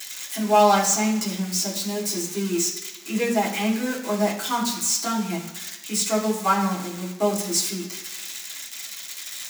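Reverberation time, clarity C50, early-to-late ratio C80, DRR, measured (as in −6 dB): 1.1 s, 7.0 dB, 9.5 dB, −7.0 dB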